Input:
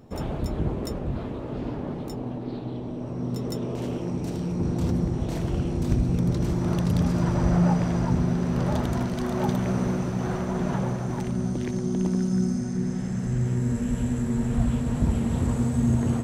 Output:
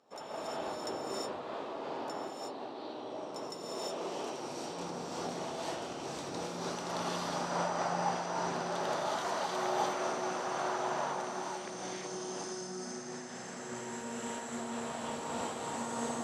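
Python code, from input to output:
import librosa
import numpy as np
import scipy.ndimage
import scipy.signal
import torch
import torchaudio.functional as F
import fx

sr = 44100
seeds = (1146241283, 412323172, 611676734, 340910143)

y = fx.bandpass_edges(x, sr, low_hz=790.0, high_hz=6900.0)
y = fx.peak_eq(y, sr, hz=2100.0, db=-6.0, octaves=1.5)
y = fx.rev_gated(y, sr, seeds[0], gate_ms=390, shape='rising', drr_db=-6.5)
y = fx.am_noise(y, sr, seeds[1], hz=5.7, depth_pct=50)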